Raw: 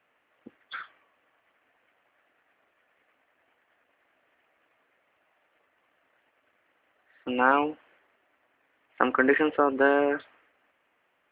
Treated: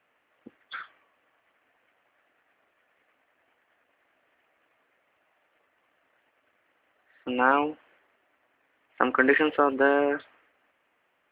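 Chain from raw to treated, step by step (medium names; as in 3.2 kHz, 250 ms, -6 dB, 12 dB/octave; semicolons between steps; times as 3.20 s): 9.16–9.74 s: treble shelf 3.4 kHz -> 3 kHz +11.5 dB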